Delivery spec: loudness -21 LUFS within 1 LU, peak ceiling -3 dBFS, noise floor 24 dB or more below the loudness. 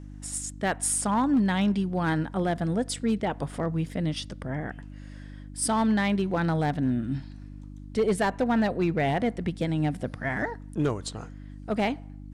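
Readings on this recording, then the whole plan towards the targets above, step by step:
clipped samples 0.6%; clipping level -17.5 dBFS; hum 50 Hz; highest harmonic 300 Hz; hum level -41 dBFS; loudness -27.5 LUFS; peak level -17.5 dBFS; loudness target -21.0 LUFS
-> clip repair -17.5 dBFS; de-hum 50 Hz, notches 6; trim +6.5 dB

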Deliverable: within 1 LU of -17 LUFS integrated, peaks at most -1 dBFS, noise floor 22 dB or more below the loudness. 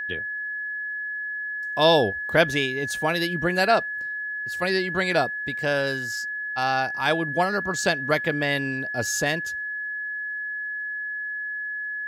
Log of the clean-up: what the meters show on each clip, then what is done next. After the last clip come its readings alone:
tick rate 23 per s; steady tone 1.7 kHz; tone level -28 dBFS; loudness -24.5 LUFS; peak level -5.0 dBFS; loudness target -17.0 LUFS
-> de-click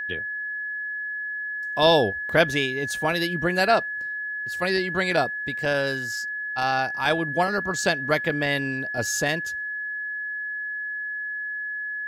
tick rate 0.17 per s; steady tone 1.7 kHz; tone level -28 dBFS
-> band-stop 1.7 kHz, Q 30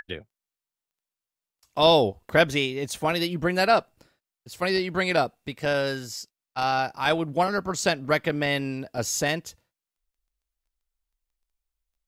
steady tone not found; loudness -24.5 LUFS; peak level -6.0 dBFS; loudness target -17.0 LUFS
-> trim +7.5 dB; peak limiter -1 dBFS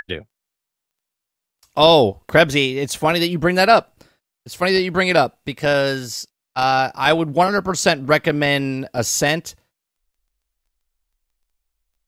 loudness -17.5 LUFS; peak level -1.0 dBFS; noise floor -83 dBFS

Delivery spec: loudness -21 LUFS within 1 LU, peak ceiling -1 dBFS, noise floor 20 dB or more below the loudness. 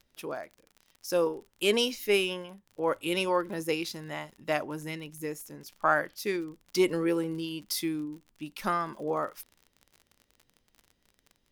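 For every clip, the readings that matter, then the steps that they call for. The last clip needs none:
tick rate 40 per s; loudness -30.5 LUFS; peak level -11.5 dBFS; loudness target -21.0 LUFS
-> de-click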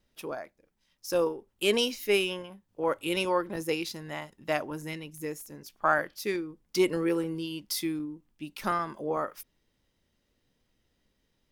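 tick rate 0.43 per s; loudness -30.5 LUFS; peak level -11.5 dBFS; loudness target -21.0 LUFS
-> trim +9.5 dB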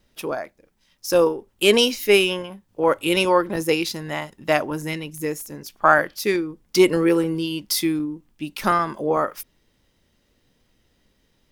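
loudness -21.0 LUFS; peak level -2.0 dBFS; noise floor -66 dBFS

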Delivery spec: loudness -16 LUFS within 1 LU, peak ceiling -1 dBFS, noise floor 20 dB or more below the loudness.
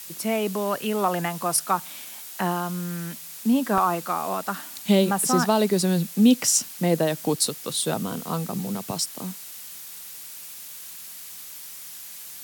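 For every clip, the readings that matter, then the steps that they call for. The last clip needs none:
dropouts 1; longest dropout 2.6 ms; noise floor -40 dBFS; noise floor target -44 dBFS; loudness -24.0 LUFS; peak level -7.0 dBFS; loudness target -16.0 LUFS
-> interpolate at 3.78 s, 2.6 ms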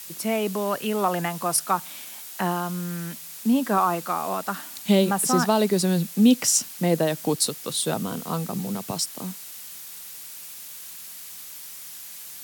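dropouts 0; noise floor -40 dBFS; noise floor target -44 dBFS
-> noise reduction 6 dB, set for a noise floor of -40 dBFS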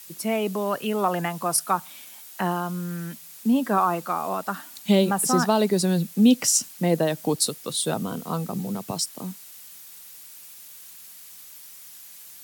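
noise floor -45 dBFS; loudness -24.0 LUFS; peak level -7.0 dBFS; loudness target -16.0 LUFS
-> trim +8 dB; peak limiter -1 dBFS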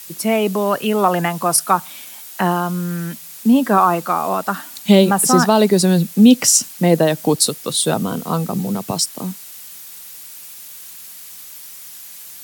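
loudness -16.5 LUFS; peak level -1.0 dBFS; noise floor -37 dBFS

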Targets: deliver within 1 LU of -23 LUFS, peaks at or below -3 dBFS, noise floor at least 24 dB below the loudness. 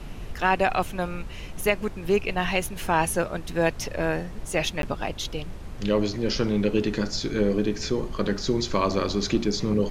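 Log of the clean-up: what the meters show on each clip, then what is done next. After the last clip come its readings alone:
dropouts 1; longest dropout 12 ms; noise floor -38 dBFS; noise floor target -50 dBFS; loudness -26.0 LUFS; peak level -7.5 dBFS; loudness target -23.0 LUFS
-> interpolate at 4.82 s, 12 ms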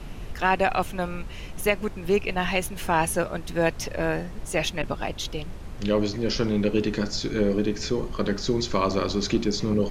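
dropouts 0; noise floor -38 dBFS; noise floor target -50 dBFS
-> noise print and reduce 12 dB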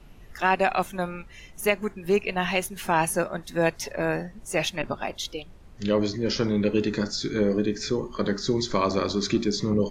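noise floor -48 dBFS; noise floor target -51 dBFS
-> noise print and reduce 6 dB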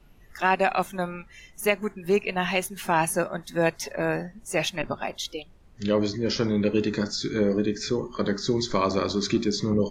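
noise floor -53 dBFS; loudness -26.5 LUFS; peak level -7.5 dBFS; loudness target -23.0 LUFS
-> trim +3.5 dB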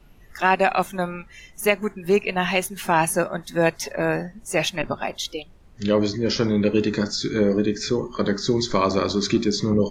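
loudness -23.0 LUFS; peak level -4.0 dBFS; noise floor -49 dBFS

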